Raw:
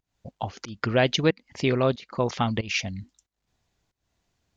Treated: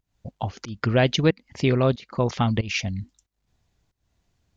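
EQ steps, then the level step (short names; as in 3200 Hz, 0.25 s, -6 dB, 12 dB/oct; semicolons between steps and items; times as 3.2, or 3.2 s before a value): low shelf 190 Hz +8 dB; 0.0 dB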